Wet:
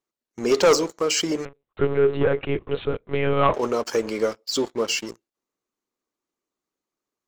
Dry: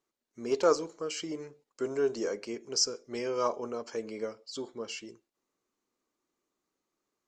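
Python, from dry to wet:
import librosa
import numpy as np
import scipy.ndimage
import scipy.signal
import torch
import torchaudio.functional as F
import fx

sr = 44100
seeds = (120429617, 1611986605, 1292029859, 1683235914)

y = fx.hpss(x, sr, part='percussive', gain_db=5)
y = fx.leveller(y, sr, passes=3)
y = fx.lpc_monotone(y, sr, seeds[0], pitch_hz=140.0, order=10, at=(1.45, 3.54))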